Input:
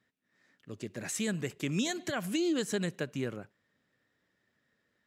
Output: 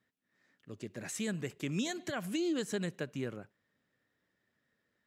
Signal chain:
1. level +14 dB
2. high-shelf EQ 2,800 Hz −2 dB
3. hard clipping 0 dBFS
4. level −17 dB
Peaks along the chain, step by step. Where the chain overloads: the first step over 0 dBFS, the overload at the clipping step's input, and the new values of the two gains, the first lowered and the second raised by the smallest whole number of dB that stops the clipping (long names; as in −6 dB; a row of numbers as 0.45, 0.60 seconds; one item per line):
−5.5, −6.0, −6.0, −23.0 dBFS
no step passes full scale